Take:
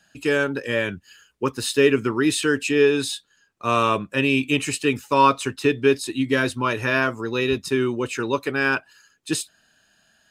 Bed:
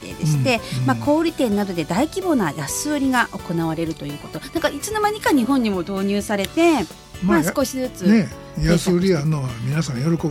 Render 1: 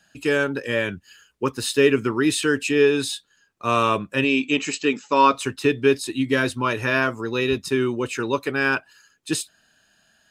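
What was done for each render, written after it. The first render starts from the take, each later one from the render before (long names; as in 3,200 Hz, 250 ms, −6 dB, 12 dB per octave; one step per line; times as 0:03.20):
0:04.24–0:05.34: linear-phase brick-wall band-pass 150–8,000 Hz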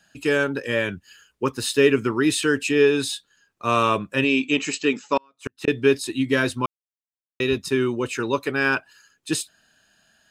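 0:05.17–0:05.68: gate with flip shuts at −13 dBFS, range −41 dB
0:06.66–0:07.40: silence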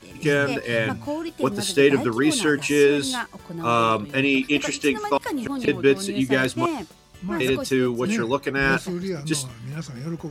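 mix in bed −11 dB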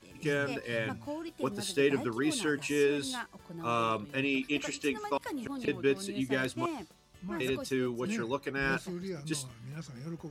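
level −10.5 dB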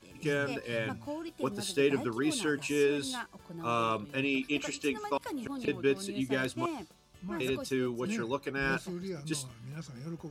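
notch filter 1,900 Hz, Q 10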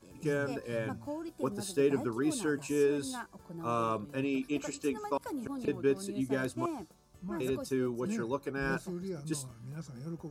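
parametric band 3,000 Hz −11 dB 1.3 octaves
notch filter 1,900 Hz, Q 13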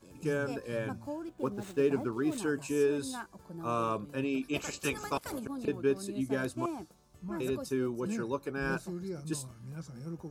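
0:01.15–0:02.38: running median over 9 samples
0:04.53–0:05.38: ceiling on every frequency bin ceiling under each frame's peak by 18 dB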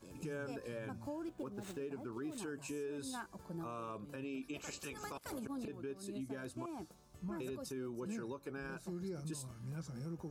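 downward compressor 12 to 1, threshold −38 dBFS, peak gain reduction 16 dB
brickwall limiter −34.5 dBFS, peak gain reduction 8.5 dB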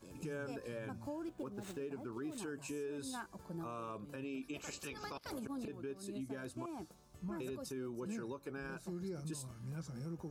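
0:04.87–0:05.31: high shelf with overshoot 6,200 Hz −7 dB, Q 3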